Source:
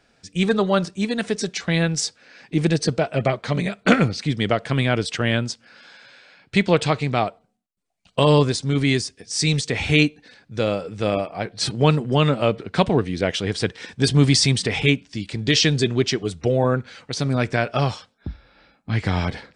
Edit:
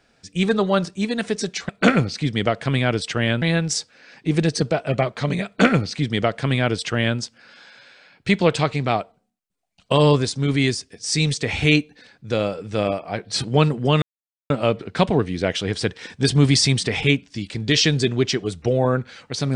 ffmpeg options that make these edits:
-filter_complex "[0:a]asplit=4[a][b][c][d];[a]atrim=end=1.692[e];[b]atrim=start=3.728:end=5.462[f];[c]atrim=start=1.688:end=12.29,asetpts=PTS-STARTPTS,afade=t=out:st=10.598:d=0.004:c=hsin,apad=pad_dur=0.48[g];[d]atrim=start=12.29,asetpts=PTS-STARTPTS,afade=t=in:d=0.004:c=hsin[h];[e][f]acrossfade=d=0.004:c1=hsin:c2=hsin[i];[g][h]concat=n=2:v=0:a=1[j];[i][j]acrossfade=d=0.004:c1=hsin:c2=hsin"

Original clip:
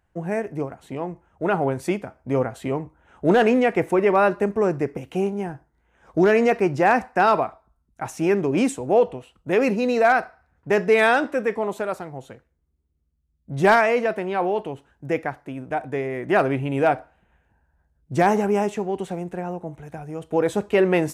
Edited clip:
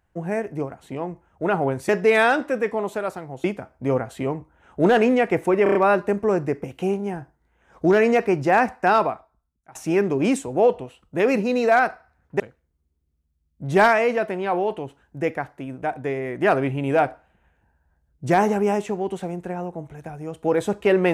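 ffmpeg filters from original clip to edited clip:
-filter_complex "[0:a]asplit=9[a][b][c][d][e][f][g][h][i];[a]atrim=end=1.892[j];[b]atrim=start=10.728:end=12.282[k];[c]atrim=start=1.888:end=4.112[l];[d]atrim=start=4.078:end=4.112[m];[e]atrim=start=4.078:end=4.112[n];[f]atrim=start=4.078:end=4.112[o];[g]atrim=start=4.078:end=8.08,asetpts=PTS-STARTPTS,afade=t=out:st=3.182:d=0.82:silence=0.0707946[p];[h]atrim=start=8.08:end=10.732,asetpts=PTS-STARTPTS,afade=t=in:d=0.004:c=hsin:silence=0.0707946[q];[i]atrim=start=12.278[r];[j][k]acrossfade=d=0.004:c1=hsin:c2=hsin[s];[s][l]acrossfade=d=0.004:c1=hsin:c2=hsin[t];[t][m]acrossfade=d=0.004:c1=hsin:c2=hsin[u];[u][n]acrossfade=d=0.004:c1=hsin:c2=hsin[v];[v][o]acrossfade=d=0.004:c1=hsin:c2=hsin[w];[p][q]concat=n=2:v=0:a=1[x];[w][x]acrossfade=d=0.004:c1=hsin:c2=hsin[y];[y][r]acrossfade=d=0.004:c1=hsin:c2=hsin"

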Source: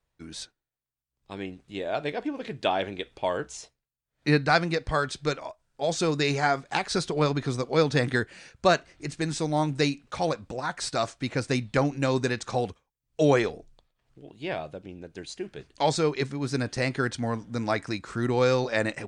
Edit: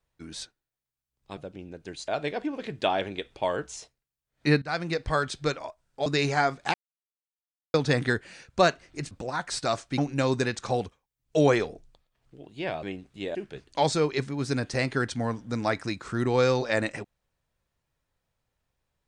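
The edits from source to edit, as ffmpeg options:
-filter_complex "[0:a]asplit=11[a][b][c][d][e][f][g][h][i][j][k];[a]atrim=end=1.372[l];[b]atrim=start=14.668:end=15.382[m];[c]atrim=start=1.888:end=4.43,asetpts=PTS-STARTPTS,afade=t=out:st=2.538:d=0.004:c=hsin:silence=0.112202[n];[d]atrim=start=4.43:end=5.872,asetpts=PTS-STARTPTS,afade=t=in:d=0.39:silence=0.112202[o];[e]atrim=start=6.118:end=6.8,asetpts=PTS-STARTPTS,afade=t=out:st=0.678:d=0.004:c=hsin[p];[f]atrim=start=6.8:end=7.8,asetpts=PTS-STARTPTS,volume=0[q];[g]atrim=start=7.8:end=9.172,asetpts=PTS-STARTPTS,afade=t=in:d=0.004:c=hsin[r];[h]atrim=start=10.408:end=11.282[s];[i]atrim=start=11.818:end=14.672[t];[j]atrim=start=1.368:end=1.892[u];[k]atrim=start=15.378[v];[l][m]acrossfade=d=0.004:c1=hsin:c2=hsin[w];[n][o]concat=n=2:v=0:a=1[x];[w][x]acrossfade=d=0.004:c1=hsin:c2=hsin[y];[p][q][r]concat=n=3:v=0:a=1[z];[y][z]acrossfade=d=0.004:c1=hsin:c2=hsin[aa];[aa][s]acrossfade=d=0.004:c1=hsin:c2=hsin[ab];[ab][t]acrossfade=d=0.004:c1=hsin:c2=hsin[ac];[ac][u]acrossfade=d=0.004:c1=hsin:c2=hsin[ad];[ad][v]acrossfade=d=0.004:c1=hsin:c2=hsin"

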